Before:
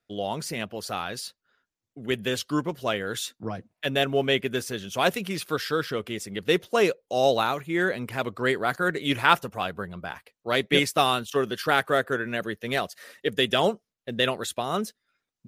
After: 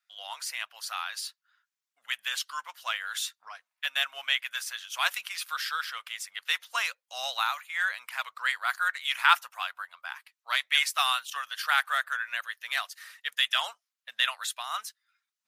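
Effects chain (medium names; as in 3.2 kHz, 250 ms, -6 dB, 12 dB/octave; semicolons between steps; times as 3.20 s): inverse Chebyshev high-pass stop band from 400 Hz, stop band 50 dB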